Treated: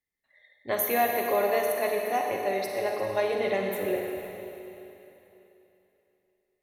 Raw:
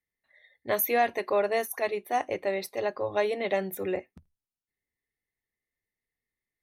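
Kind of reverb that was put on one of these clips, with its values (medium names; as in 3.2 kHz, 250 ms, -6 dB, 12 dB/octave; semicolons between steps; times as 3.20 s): Schroeder reverb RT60 3.2 s, DRR 0.5 dB; trim -1.5 dB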